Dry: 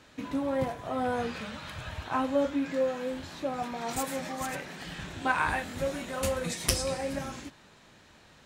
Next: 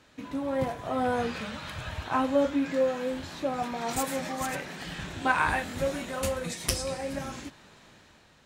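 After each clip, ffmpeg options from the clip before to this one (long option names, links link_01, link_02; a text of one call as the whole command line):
ffmpeg -i in.wav -af "dynaudnorm=framelen=120:gausssize=9:maxgain=5.5dB,volume=-3dB" out.wav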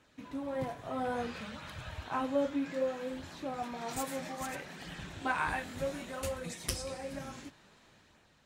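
ffmpeg -i in.wav -af "flanger=delay=0.1:depth=7.4:regen=-61:speed=0.61:shape=sinusoidal,volume=-3dB" out.wav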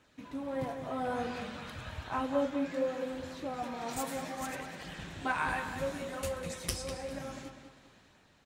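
ffmpeg -i in.wav -filter_complex "[0:a]asplit=2[link_01][link_02];[link_02]adelay=199,lowpass=frequency=4200:poles=1,volume=-7.5dB,asplit=2[link_03][link_04];[link_04]adelay=199,lowpass=frequency=4200:poles=1,volume=0.38,asplit=2[link_05][link_06];[link_06]adelay=199,lowpass=frequency=4200:poles=1,volume=0.38,asplit=2[link_07][link_08];[link_08]adelay=199,lowpass=frequency=4200:poles=1,volume=0.38[link_09];[link_01][link_03][link_05][link_07][link_09]amix=inputs=5:normalize=0" out.wav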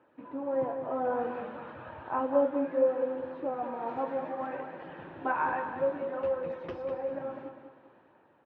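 ffmpeg -i in.wav -af "highpass=160,equalizer=frequency=190:width_type=q:width=4:gain=-5,equalizer=frequency=340:width_type=q:width=4:gain=7,equalizer=frequency=530:width_type=q:width=4:gain=7,equalizer=frequency=900:width_type=q:width=4:gain=7,equalizer=frequency=2100:width_type=q:width=4:gain=-8,lowpass=frequency=2200:width=0.5412,lowpass=frequency=2200:width=1.3066" out.wav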